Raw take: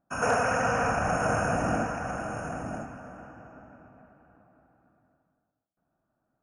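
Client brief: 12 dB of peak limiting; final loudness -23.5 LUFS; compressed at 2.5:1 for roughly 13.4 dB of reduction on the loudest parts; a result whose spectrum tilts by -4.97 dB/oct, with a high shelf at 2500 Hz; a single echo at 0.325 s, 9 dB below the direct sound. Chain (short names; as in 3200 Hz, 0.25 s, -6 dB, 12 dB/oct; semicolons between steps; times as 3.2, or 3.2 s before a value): high shelf 2500 Hz +4 dB; compressor 2.5:1, threshold -43 dBFS; limiter -38 dBFS; echo 0.325 s -9 dB; gain +23.5 dB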